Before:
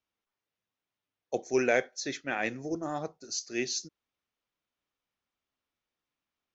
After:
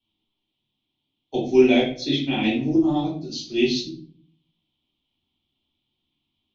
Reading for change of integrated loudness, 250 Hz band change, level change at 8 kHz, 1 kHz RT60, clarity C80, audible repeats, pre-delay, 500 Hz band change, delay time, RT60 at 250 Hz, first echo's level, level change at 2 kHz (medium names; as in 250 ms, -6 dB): +10.5 dB, +16.0 dB, no reading, 0.40 s, 10.5 dB, no echo, 3 ms, +9.5 dB, no echo, 0.75 s, no echo, +3.0 dB